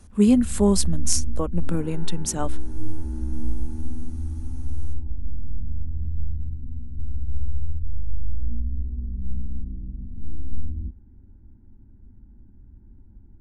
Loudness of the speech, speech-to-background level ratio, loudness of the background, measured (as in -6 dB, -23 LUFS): -23.5 LUFS, 10.0 dB, -33.5 LUFS